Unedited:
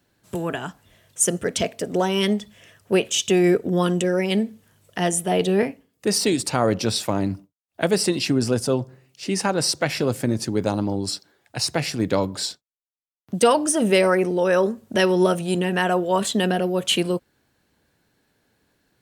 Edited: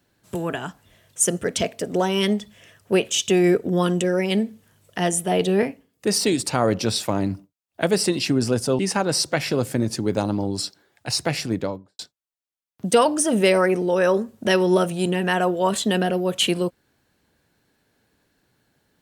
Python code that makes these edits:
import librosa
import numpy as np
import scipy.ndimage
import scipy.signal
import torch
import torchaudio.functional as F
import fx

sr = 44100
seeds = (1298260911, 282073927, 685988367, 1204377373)

y = fx.studio_fade_out(x, sr, start_s=11.87, length_s=0.61)
y = fx.edit(y, sr, fx.cut(start_s=8.79, length_s=0.49), tone=tone)